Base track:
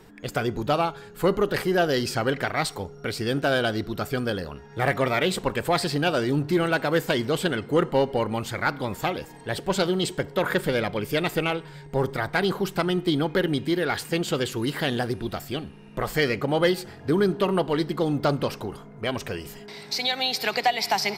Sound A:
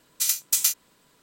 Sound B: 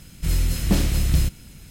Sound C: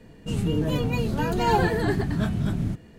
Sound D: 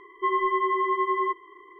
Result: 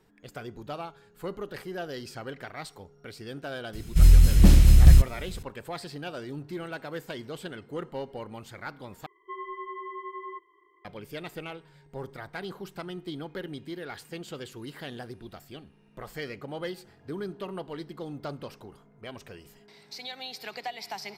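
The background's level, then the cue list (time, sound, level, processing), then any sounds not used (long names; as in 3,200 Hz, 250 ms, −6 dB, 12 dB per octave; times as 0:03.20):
base track −14 dB
0:03.73: mix in B −2.5 dB + low-shelf EQ 130 Hz +11 dB
0:09.06: overwrite with D −14 dB
not used: A, C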